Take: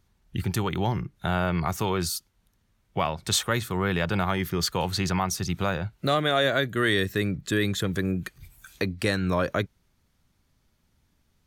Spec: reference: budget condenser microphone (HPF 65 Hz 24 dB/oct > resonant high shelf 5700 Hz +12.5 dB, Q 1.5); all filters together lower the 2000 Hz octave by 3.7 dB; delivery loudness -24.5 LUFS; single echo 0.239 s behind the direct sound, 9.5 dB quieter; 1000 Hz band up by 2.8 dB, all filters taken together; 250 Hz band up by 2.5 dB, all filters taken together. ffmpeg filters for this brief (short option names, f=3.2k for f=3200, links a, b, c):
-af "highpass=f=65:w=0.5412,highpass=f=65:w=1.3066,equalizer=f=250:t=o:g=3.5,equalizer=f=1k:t=o:g=5.5,equalizer=f=2k:t=o:g=-6,highshelf=f=5.7k:t=q:w=1.5:g=12.5,aecho=1:1:239:0.335,volume=-1.5dB"